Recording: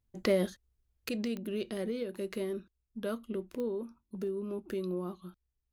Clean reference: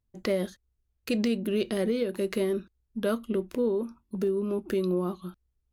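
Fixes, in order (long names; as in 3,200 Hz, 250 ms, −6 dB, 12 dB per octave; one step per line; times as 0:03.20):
click removal
level correction +8 dB, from 0:01.09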